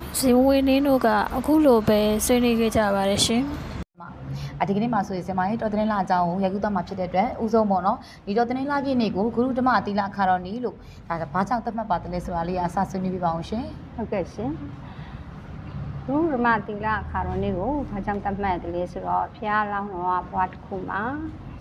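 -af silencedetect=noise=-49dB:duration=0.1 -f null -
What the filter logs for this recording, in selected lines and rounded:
silence_start: 3.83
silence_end: 3.97 | silence_duration: 0.15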